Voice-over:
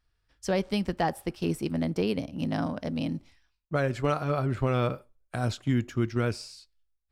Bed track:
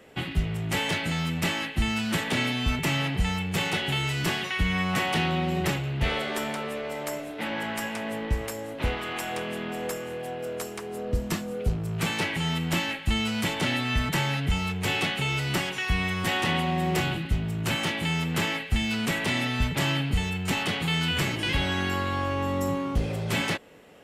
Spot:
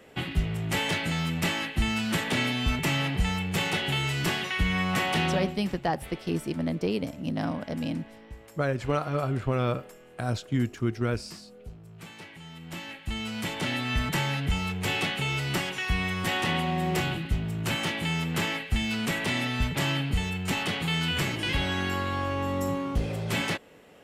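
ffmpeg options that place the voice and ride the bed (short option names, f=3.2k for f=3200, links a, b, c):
-filter_complex "[0:a]adelay=4850,volume=-0.5dB[a];[1:a]volume=15.5dB,afade=t=out:st=5.34:d=0.24:silence=0.141254,afade=t=in:st=12.53:d=1.47:silence=0.158489[b];[a][b]amix=inputs=2:normalize=0"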